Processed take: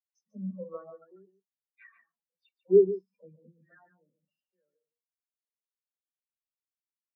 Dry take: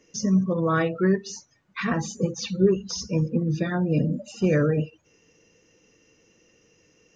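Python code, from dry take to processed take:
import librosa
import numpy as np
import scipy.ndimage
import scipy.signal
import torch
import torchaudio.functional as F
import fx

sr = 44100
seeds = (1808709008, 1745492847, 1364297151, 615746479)

y = 10.0 ** (-13.5 / 20.0) * np.tanh(x / 10.0 ** (-13.5 / 20.0))
y = fx.env_lowpass_down(y, sr, base_hz=750.0, full_db=-20.0)
y = fx.bass_treble(y, sr, bass_db=11, treble_db=-7)
y = y + 10.0 ** (-4.5 / 20.0) * np.pad(y, (int(144 * sr / 1000.0), 0))[:len(y)]
y = fx.filter_lfo_highpass(y, sr, shape='saw_up', hz=0.39, low_hz=480.0, high_hz=2700.0, q=0.95)
y = fx.low_shelf(y, sr, hz=120.0, db=4.5)
y = fx.dispersion(y, sr, late='lows', ms=123.0, hz=880.0)
y = fx.spectral_expand(y, sr, expansion=2.5)
y = F.gain(torch.from_numpy(y), 5.5).numpy()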